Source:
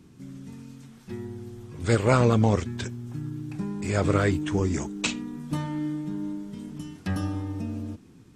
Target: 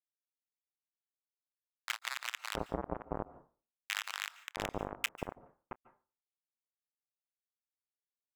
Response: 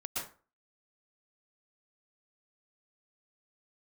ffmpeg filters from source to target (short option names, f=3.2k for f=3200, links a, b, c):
-filter_complex "[0:a]lowshelf=f=200:g=-12,acompressor=threshold=-27dB:ratio=8,aresample=8000,acrusher=bits=3:mix=0:aa=0.000001,aresample=44100,adynamicsmooth=sensitivity=5.5:basefreq=670,asoftclip=type=hard:threshold=-33.5dB,aeval=exprs='val(0)*sin(2*PI*74*n/s)':c=same,acrossover=split=1100[a][b];[a]adelay=670[c];[c][b]amix=inputs=2:normalize=0,asplit=2[d][e];[1:a]atrim=start_sample=2205,adelay=27[f];[e][f]afir=irnorm=-1:irlink=0,volume=-19dB[g];[d][g]amix=inputs=2:normalize=0,volume=15dB"